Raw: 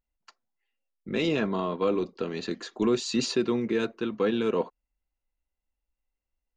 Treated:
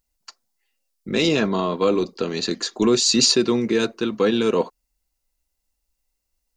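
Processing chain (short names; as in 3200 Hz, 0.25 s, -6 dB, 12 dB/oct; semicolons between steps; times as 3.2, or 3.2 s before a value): EQ curve 1800 Hz 0 dB, 3200 Hz +2 dB, 4700 Hz +10 dB; gain +6.5 dB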